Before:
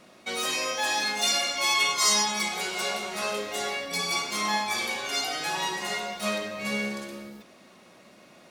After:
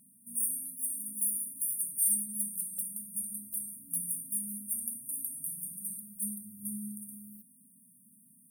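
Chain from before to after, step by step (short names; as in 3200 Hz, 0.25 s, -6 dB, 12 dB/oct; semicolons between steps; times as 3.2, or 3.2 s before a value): brick-wall FIR band-stop 270–8600 Hz; tilt +3 dB/oct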